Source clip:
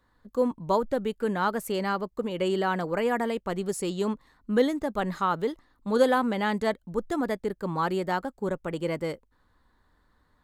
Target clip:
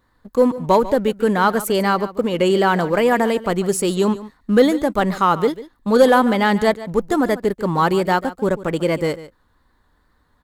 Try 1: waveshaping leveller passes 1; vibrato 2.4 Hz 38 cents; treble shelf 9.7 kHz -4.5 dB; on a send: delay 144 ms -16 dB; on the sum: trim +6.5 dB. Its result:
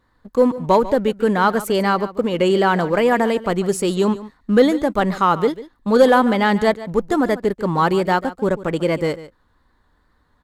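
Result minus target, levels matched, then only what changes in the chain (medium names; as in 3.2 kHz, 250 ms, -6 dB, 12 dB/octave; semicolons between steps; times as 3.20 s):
8 kHz band -3.5 dB
change: treble shelf 9.7 kHz +4 dB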